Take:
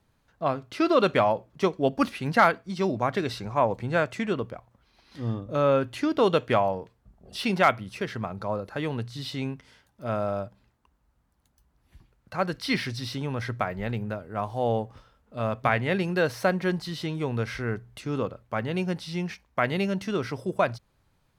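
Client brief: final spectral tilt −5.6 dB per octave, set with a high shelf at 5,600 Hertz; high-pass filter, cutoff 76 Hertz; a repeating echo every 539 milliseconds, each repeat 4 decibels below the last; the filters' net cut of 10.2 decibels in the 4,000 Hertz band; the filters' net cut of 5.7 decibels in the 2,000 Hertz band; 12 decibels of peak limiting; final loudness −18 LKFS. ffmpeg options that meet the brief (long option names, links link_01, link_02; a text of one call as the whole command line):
ffmpeg -i in.wav -af "highpass=76,equalizer=frequency=2000:width_type=o:gain=-5,equalizer=frequency=4000:width_type=o:gain=-8.5,highshelf=frequency=5600:gain=-8,alimiter=limit=-20dB:level=0:latency=1,aecho=1:1:539|1078|1617|2156|2695|3234|3773|4312|4851:0.631|0.398|0.25|0.158|0.0994|0.0626|0.0394|0.0249|0.0157,volume=13dB" out.wav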